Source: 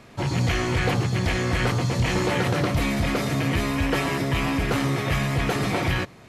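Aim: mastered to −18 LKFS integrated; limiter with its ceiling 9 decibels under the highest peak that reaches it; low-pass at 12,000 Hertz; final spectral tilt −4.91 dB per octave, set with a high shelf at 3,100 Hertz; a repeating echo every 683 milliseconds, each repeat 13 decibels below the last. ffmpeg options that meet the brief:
ffmpeg -i in.wav -af "lowpass=12000,highshelf=frequency=3100:gain=4.5,alimiter=limit=-22dB:level=0:latency=1,aecho=1:1:683|1366|2049:0.224|0.0493|0.0108,volume=11.5dB" out.wav

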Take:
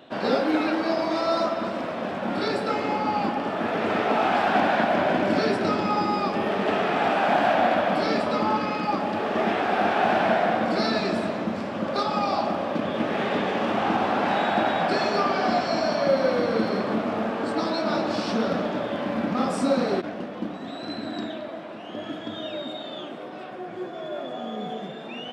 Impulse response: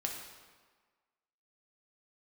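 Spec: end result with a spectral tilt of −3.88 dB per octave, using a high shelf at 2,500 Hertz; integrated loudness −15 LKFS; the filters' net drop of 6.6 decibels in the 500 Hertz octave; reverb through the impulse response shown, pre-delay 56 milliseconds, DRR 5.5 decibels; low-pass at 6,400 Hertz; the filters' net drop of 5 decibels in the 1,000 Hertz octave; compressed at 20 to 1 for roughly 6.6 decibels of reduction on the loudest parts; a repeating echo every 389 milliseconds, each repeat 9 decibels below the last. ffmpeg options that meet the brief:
-filter_complex "[0:a]lowpass=6400,equalizer=frequency=500:width_type=o:gain=-7.5,equalizer=frequency=1000:width_type=o:gain=-3,highshelf=frequency=2500:gain=-4.5,acompressor=threshold=-28dB:ratio=20,aecho=1:1:389|778|1167|1556:0.355|0.124|0.0435|0.0152,asplit=2[link_01][link_02];[1:a]atrim=start_sample=2205,adelay=56[link_03];[link_02][link_03]afir=irnorm=-1:irlink=0,volume=-7.5dB[link_04];[link_01][link_04]amix=inputs=2:normalize=0,volume=16.5dB"

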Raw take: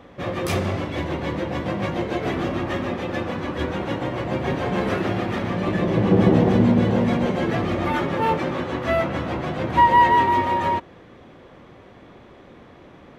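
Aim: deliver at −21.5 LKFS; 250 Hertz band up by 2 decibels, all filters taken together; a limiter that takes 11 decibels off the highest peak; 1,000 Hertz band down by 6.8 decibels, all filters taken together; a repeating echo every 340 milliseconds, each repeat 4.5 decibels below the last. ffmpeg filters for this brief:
ffmpeg -i in.wav -af "equalizer=frequency=250:width_type=o:gain=3,equalizer=frequency=1000:width_type=o:gain=-7.5,alimiter=limit=-14.5dB:level=0:latency=1,aecho=1:1:340|680|1020|1360|1700|2040|2380|2720|3060:0.596|0.357|0.214|0.129|0.0772|0.0463|0.0278|0.0167|0.01,volume=1.5dB" out.wav

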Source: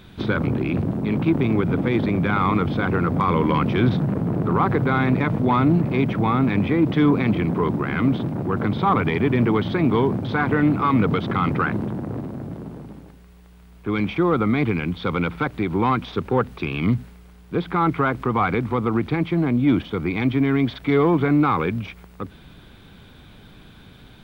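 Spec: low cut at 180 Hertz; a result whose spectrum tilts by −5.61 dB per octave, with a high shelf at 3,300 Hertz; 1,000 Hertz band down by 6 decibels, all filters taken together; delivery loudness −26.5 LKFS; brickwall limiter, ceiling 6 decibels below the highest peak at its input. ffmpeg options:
ffmpeg -i in.wav -af "highpass=180,equalizer=frequency=1000:width_type=o:gain=-8.5,highshelf=frequency=3300:gain=5.5,volume=-1.5dB,alimiter=limit=-16.5dB:level=0:latency=1" out.wav

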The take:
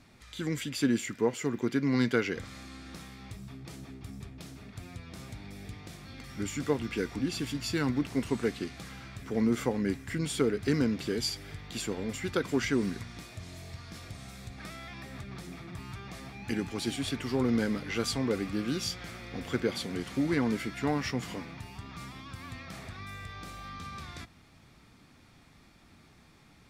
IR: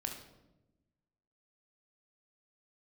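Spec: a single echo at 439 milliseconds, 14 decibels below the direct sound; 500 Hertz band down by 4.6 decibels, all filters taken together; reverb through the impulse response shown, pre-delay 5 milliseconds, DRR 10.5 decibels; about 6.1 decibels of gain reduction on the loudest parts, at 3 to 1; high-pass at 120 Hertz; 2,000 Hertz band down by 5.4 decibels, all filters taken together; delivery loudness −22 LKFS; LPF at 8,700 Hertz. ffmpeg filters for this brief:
-filter_complex "[0:a]highpass=120,lowpass=8700,equalizer=frequency=500:width_type=o:gain=-5.5,equalizer=frequency=2000:width_type=o:gain=-6.5,acompressor=threshold=-32dB:ratio=3,aecho=1:1:439:0.2,asplit=2[link_01][link_02];[1:a]atrim=start_sample=2205,adelay=5[link_03];[link_02][link_03]afir=irnorm=-1:irlink=0,volume=-10.5dB[link_04];[link_01][link_04]amix=inputs=2:normalize=0,volume=16.5dB"

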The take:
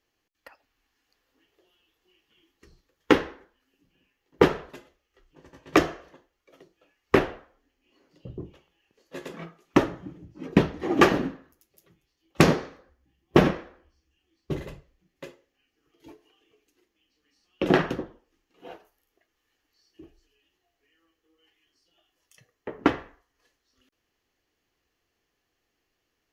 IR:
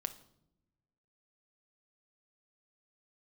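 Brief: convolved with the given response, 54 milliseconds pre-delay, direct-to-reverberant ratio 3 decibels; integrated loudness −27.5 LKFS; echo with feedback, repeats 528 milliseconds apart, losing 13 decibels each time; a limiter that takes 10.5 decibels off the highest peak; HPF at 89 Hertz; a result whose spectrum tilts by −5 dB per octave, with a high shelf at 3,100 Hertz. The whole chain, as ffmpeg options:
-filter_complex "[0:a]highpass=89,highshelf=frequency=3100:gain=8.5,alimiter=limit=-11.5dB:level=0:latency=1,aecho=1:1:528|1056|1584:0.224|0.0493|0.0108,asplit=2[link_01][link_02];[1:a]atrim=start_sample=2205,adelay=54[link_03];[link_02][link_03]afir=irnorm=-1:irlink=0,volume=-2dB[link_04];[link_01][link_04]amix=inputs=2:normalize=0,volume=2dB"

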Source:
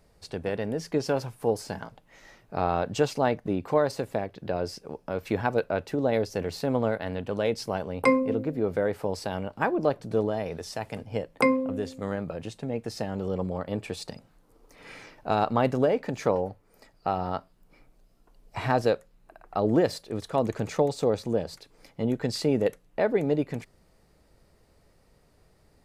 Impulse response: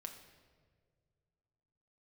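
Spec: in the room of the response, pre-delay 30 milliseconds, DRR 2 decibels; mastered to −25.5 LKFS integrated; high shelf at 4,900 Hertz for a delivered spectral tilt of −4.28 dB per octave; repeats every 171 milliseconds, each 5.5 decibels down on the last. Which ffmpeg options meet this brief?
-filter_complex "[0:a]highshelf=frequency=4900:gain=-6.5,aecho=1:1:171|342|513|684|855|1026|1197:0.531|0.281|0.149|0.079|0.0419|0.0222|0.0118,asplit=2[link_01][link_02];[1:a]atrim=start_sample=2205,adelay=30[link_03];[link_02][link_03]afir=irnorm=-1:irlink=0,volume=2dB[link_04];[link_01][link_04]amix=inputs=2:normalize=0"

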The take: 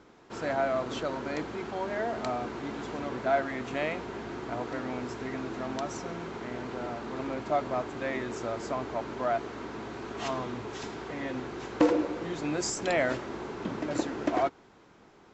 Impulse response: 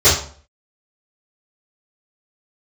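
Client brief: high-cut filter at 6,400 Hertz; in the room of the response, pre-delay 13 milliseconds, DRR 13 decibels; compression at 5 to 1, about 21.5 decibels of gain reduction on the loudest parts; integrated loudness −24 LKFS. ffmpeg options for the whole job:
-filter_complex "[0:a]lowpass=6400,acompressor=threshold=-43dB:ratio=5,asplit=2[link_01][link_02];[1:a]atrim=start_sample=2205,adelay=13[link_03];[link_02][link_03]afir=irnorm=-1:irlink=0,volume=-37.5dB[link_04];[link_01][link_04]amix=inputs=2:normalize=0,volume=21dB"

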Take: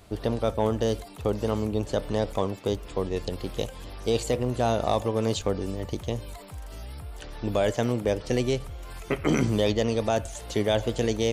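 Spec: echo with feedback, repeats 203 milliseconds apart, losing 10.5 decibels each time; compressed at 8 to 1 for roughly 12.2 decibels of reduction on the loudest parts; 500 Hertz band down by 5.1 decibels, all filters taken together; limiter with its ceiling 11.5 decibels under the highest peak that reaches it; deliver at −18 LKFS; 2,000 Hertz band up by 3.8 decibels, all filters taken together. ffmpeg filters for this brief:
ffmpeg -i in.wav -af "equalizer=frequency=500:width_type=o:gain=-6.5,equalizer=frequency=2000:width_type=o:gain=5,acompressor=threshold=-33dB:ratio=8,alimiter=level_in=7dB:limit=-24dB:level=0:latency=1,volume=-7dB,aecho=1:1:203|406|609:0.299|0.0896|0.0269,volume=24dB" out.wav

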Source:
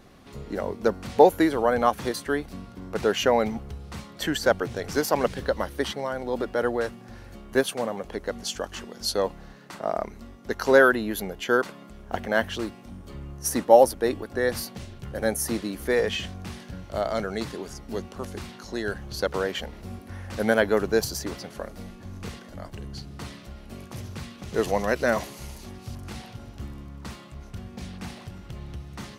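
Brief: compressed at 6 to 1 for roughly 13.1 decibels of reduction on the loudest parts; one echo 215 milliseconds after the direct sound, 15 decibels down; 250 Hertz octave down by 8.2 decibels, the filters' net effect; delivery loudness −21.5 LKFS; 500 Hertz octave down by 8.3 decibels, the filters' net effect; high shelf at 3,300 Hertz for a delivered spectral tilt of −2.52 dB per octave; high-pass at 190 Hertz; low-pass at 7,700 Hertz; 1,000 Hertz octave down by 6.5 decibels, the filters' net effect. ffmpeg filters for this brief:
ffmpeg -i in.wav -af "highpass=190,lowpass=7700,equalizer=frequency=250:width_type=o:gain=-6.5,equalizer=frequency=500:width_type=o:gain=-6.5,equalizer=frequency=1000:width_type=o:gain=-6.5,highshelf=frequency=3300:gain=3.5,acompressor=threshold=-31dB:ratio=6,aecho=1:1:215:0.178,volume=16.5dB" out.wav

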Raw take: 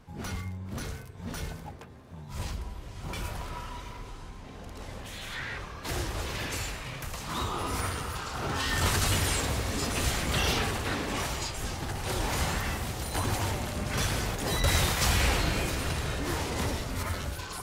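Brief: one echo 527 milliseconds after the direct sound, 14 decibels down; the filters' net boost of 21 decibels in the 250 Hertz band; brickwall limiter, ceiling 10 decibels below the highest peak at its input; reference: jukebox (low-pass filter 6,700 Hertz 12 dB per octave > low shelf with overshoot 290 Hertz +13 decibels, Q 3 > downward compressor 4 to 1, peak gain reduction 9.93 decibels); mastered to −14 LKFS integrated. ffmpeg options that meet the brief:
ffmpeg -i in.wav -af "equalizer=frequency=250:width_type=o:gain=7,alimiter=limit=-22dB:level=0:latency=1,lowpass=6700,lowshelf=frequency=290:width_type=q:width=3:gain=13,aecho=1:1:527:0.2,acompressor=threshold=-22dB:ratio=4,volume=12.5dB" out.wav

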